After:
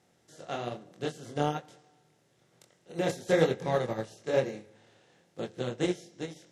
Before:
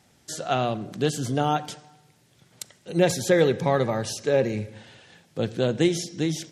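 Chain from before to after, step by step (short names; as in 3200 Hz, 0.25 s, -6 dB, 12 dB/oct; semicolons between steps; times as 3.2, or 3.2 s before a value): per-bin compression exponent 0.6; chorus 1.1 Hz, depth 5.1 ms; upward expander 2.5:1, over -31 dBFS; gain -2 dB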